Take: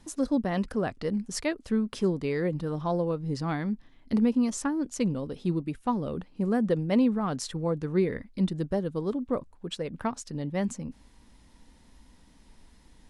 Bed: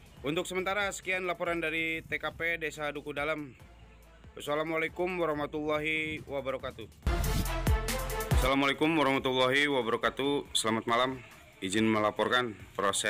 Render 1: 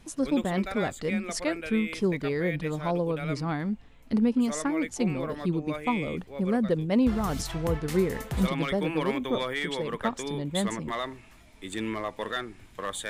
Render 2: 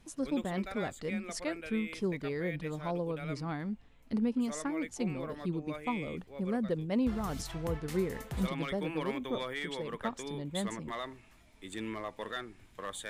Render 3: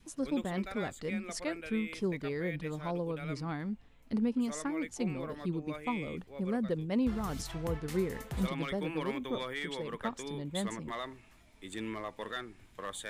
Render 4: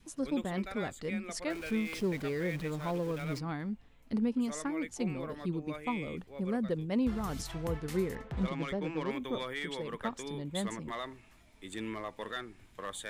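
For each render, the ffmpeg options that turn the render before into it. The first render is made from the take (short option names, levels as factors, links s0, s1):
-filter_complex "[1:a]volume=0.562[s0];[0:a][s0]amix=inputs=2:normalize=0"
-af "volume=0.447"
-af "adynamicequalizer=threshold=0.00398:dfrequency=650:dqfactor=2.5:tfrequency=650:tqfactor=2.5:attack=5:release=100:ratio=0.375:range=1.5:mode=cutabove:tftype=bell"
-filter_complex "[0:a]asettb=1/sr,asplit=3[s0][s1][s2];[s0]atrim=end=1.504[s3];[s1]atrim=start=1.5:end=3.39,asetpts=PTS-STARTPTS,afade=t=in:d=0.004:c=qsin,afade=t=out:st=1.886:d=0.004:c=qsin,aeval=exprs='val(0)+0.5*0.0075*sgn(val(0))':c=same[s4];[s2]atrim=start=3.386[s5];[s3][s4]acrossfade=d=0.004:c1=hsin:c2=qsin[s6];[s6][s5]acrossfade=d=0.004:c1=qsin:c2=hsin,asettb=1/sr,asplit=3[s7][s8][s9];[s7]atrim=end=8.154[s10];[s8]atrim=start=8.15:end=9.11,asetpts=PTS-STARTPTS,afade=t=in:d=0.004:c=qsin,afade=t=out:st=0.956:d=0.004:c=qsin,adynamicsmooth=sensitivity=8:basefreq=2300[s11];[s9]atrim=start=9.106[s12];[s10][s11]acrossfade=d=0.004:c1=hsin:c2=qsin[s13];[s13][s12]acrossfade=d=0.004:c1=qsin:c2=hsin"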